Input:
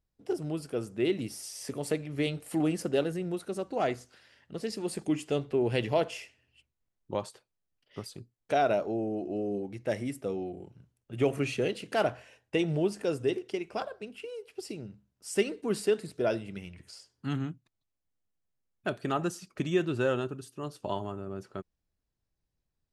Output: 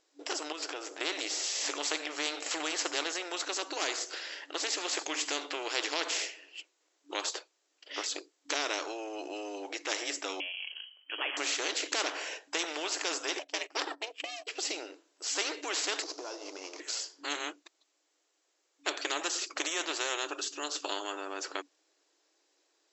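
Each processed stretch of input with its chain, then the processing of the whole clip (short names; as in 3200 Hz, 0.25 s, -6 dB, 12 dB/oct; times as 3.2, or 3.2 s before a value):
0.52–1.01 compressor 2.5:1, threshold -46 dBFS + running maximum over 3 samples
10.4–11.37 inverted band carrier 3100 Hz + HPF 500 Hz
13.39–14.47 gate -45 dBFS, range -23 dB + ring modulator 240 Hz
16.02–16.8 CVSD 32 kbps + band shelf 2400 Hz -12.5 dB + compressor 8:1, threshold -43 dBFS
whole clip: FFT band-pass 290–7800 Hz; high shelf 4900 Hz +8 dB; spectral compressor 4:1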